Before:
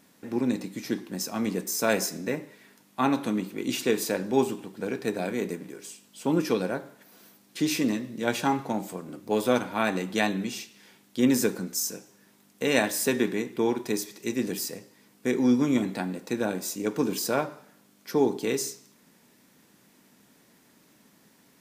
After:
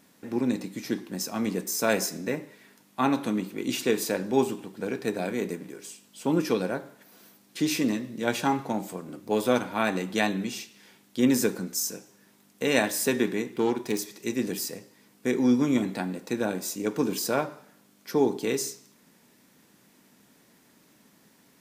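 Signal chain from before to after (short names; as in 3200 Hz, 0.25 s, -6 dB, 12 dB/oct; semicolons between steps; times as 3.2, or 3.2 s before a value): 13.5–13.99 self-modulated delay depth 0.099 ms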